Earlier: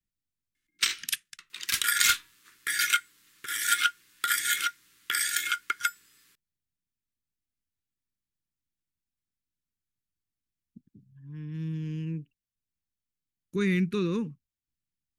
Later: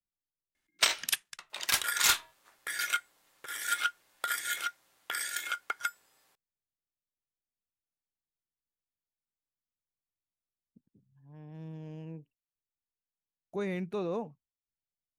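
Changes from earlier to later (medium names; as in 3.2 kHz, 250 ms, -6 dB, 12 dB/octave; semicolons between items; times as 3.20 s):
speech -11.0 dB; second sound -8.0 dB; master: remove Butterworth band-stop 690 Hz, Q 0.61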